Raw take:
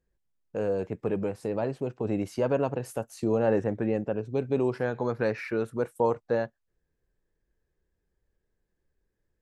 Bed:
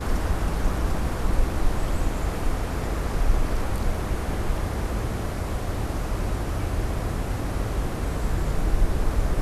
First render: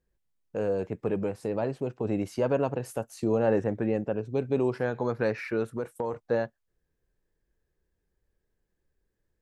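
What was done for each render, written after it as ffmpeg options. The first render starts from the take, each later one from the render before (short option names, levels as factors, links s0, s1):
-filter_complex "[0:a]asettb=1/sr,asplit=3[s0][s1][s2];[s0]atrim=end=5.734[s3];[s1]atrim=start=5.73:end=6.13,asetpts=PTS-STARTPTS,afade=t=in:d=0.004:c=qsin,afade=t=out:st=0.396:d=0.004:c=qsin,acompressor=threshold=0.0501:ratio=6:attack=3.2:release=140:knee=1:detection=peak[s4];[s2]atrim=start=6.126[s5];[s3][s4]acrossfade=d=0.004:c1=hsin:c2=qsin[s6];[s6][s5]acrossfade=d=0.004:c1=qsin:c2=hsin"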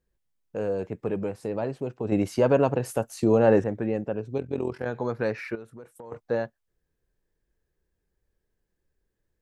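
-filter_complex "[0:a]asplit=3[s0][s1][s2];[s0]afade=t=out:st=4.37:d=0.02[s3];[s1]tremolo=f=43:d=0.788,afade=t=in:st=4.37:d=0.02,afade=t=out:st=4.85:d=0.02[s4];[s2]afade=t=in:st=4.85:d=0.02[s5];[s3][s4][s5]amix=inputs=3:normalize=0,asettb=1/sr,asplit=3[s6][s7][s8];[s6]atrim=end=5.554[s9];[s7]atrim=start=5.55:end=6.12,asetpts=PTS-STARTPTS,afade=t=in:d=0.004:c=qsin,afade=t=out:st=0.566:d=0.004:c=qsin,acompressor=threshold=0.00355:ratio=2:attack=3.2:release=140:knee=1:detection=peak[s10];[s8]atrim=start=6.116[s11];[s9][s10]acrossfade=d=0.004:c1=hsin:c2=qsin[s12];[s12][s11]acrossfade=d=0.004:c1=qsin:c2=hsin,asplit=3[s13][s14][s15];[s13]atrim=end=2.122[s16];[s14]atrim=start=2.118:end=3.642,asetpts=PTS-STARTPTS,volume=1.88[s17];[s15]atrim=start=3.638[s18];[s16][s17]acrossfade=d=0.004:c1=hsin:c2=hsin[s19];[s19][s18]acrossfade=d=0.004:c1=hsin:c2=hsin"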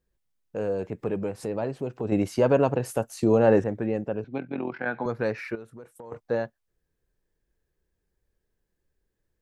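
-filter_complex "[0:a]asettb=1/sr,asplit=3[s0][s1][s2];[s0]atrim=end=0.714[s3];[s1]atrim=start=0.71:end=2.17,asetpts=PTS-STARTPTS,afade=t=in:d=0.004:c=qsin,afade=t=out:st=1.456:d=0.004:c=qsin,acompressor=mode=upward:threshold=0.0282:ratio=2.5:attack=3.2:release=140:knee=2.83:detection=peak[s4];[s2]atrim=start=2.166[s5];[s3][s4]acrossfade=d=0.004:c1=hsin:c2=qsin[s6];[s6][s5]acrossfade=d=0.004:c1=qsin:c2=hsin,asettb=1/sr,asplit=3[s7][s8][s9];[s7]atrim=end=4.244[s10];[s8]atrim=start=4.24:end=5.06,asetpts=PTS-STARTPTS,afade=t=in:d=0.004:c=qsin,afade=t=out:st=0.816:d=0.004:c=qsin,highpass=f=150:w=0.5412,highpass=f=150:w=1.3066,equalizer=f=270:t=q:w=4:g=3,equalizer=f=430:t=q:w=4:g=-9,equalizer=f=760:t=q:w=4:g=5,equalizer=f=1500:t=q:w=4:g=9,equalizer=f=2200:t=q:w=4:g=8,lowpass=f=4000:w=0.5412,lowpass=f=4000:w=1.3066[s11];[s9]atrim=start=5.056[s12];[s10][s11]acrossfade=d=0.004:c1=hsin:c2=qsin[s13];[s13][s12]acrossfade=d=0.004:c1=qsin:c2=hsin"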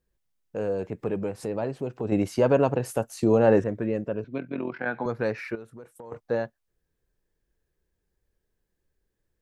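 -filter_complex "[0:a]asettb=1/sr,asplit=3[s0][s1][s2];[s0]atrim=end=3.584[s3];[s1]atrim=start=3.58:end=4.79,asetpts=PTS-STARTPTS,afade=t=in:d=0.004:c=qsin,afade=t=out:st=1.206:d=0.004:c=qsin,asuperstop=centerf=800:order=4:qfactor=5[s4];[s2]atrim=start=4.786[s5];[s3][s4]acrossfade=d=0.004:c1=hsin:c2=qsin[s6];[s6][s5]acrossfade=d=0.004:c1=qsin:c2=hsin"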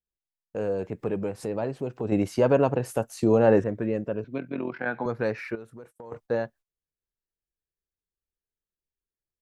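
-af "agate=range=0.1:threshold=0.00316:ratio=16:detection=peak,adynamicequalizer=threshold=0.00891:dfrequency=3200:dqfactor=0.7:tfrequency=3200:tqfactor=0.7:attack=5:release=100:ratio=0.375:range=2:mode=cutabove:tftype=highshelf"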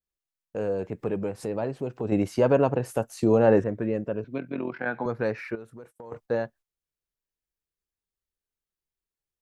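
-af "adynamicequalizer=threshold=0.00891:dfrequency=2300:dqfactor=0.7:tfrequency=2300:tqfactor=0.7:attack=5:release=100:ratio=0.375:range=1.5:mode=cutabove:tftype=highshelf"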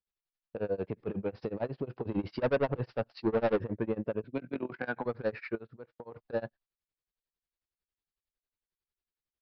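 -af "aresample=11025,asoftclip=type=tanh:threshold=0.0944,aresample=44100,tremolo=f=11:d=0.96"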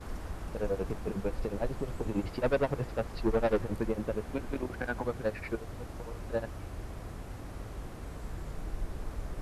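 -filter_complex "[1:a]volume=0.178[s0];[0:a][s0]amix=inputs=2:normalize=0"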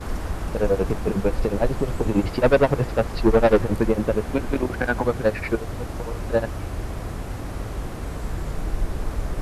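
-af "volume=3.76"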